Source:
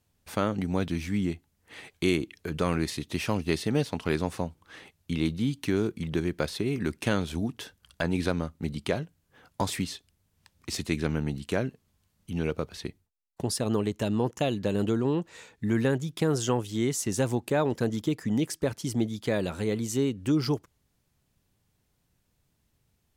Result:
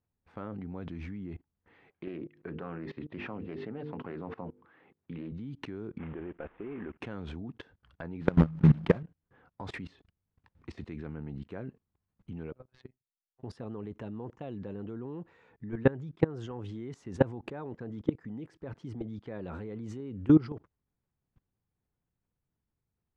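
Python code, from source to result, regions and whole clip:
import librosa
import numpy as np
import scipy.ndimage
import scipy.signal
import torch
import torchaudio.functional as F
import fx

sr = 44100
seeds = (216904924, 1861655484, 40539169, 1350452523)

y = fx.chain(x, sr, fx.bandpass_edges(low_hz=140.0, high_hz=3000.0),
    fx.hum_notches(base_hz=50, count=10),
    fx.doppler_dist(depth_ms=0.2), at=(1.9, 5.32))
y = fx.chain(y, sr, fx.cvsd(bps=16000),
    fx.peak_eq(hz=120.0, db=-13.5, octaves=1.4), at=(5.98, 7.0))
y = fx.chain(y, sr, fx.block_float(bits=3),
    fx.peak_eq(hz=160.0, db=13.5, octaves=0.34),
    fx.sustainer(db_per_s=69.0), at=(8.21, 9.03))
y = fx.chain(y, sr, fx.robotise(hz=128.0),
    fx.level_steps(step_db=23), at=(12.52, 13.43))
y = scipy.signal.sosfilt(scipy.signal.butter(2, 1600.0, 'lowpass', fs=sr, output='sos'), y)
y = fx.notch(y, sr, hz=610.0, q=12.0)
y = fx.level_steps(y, sr, step_db=23)
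y = y * 10.0 ** (6.5 / 20.0)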